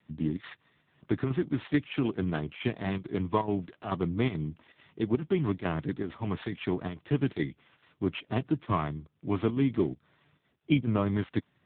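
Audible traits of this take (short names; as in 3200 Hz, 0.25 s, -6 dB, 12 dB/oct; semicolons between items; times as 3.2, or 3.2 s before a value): a buzz of ramps at a fixed pitch in blocks of 8 samples; chopped level 2.3 Hz, depth 60%, duty 85%; AMR-NB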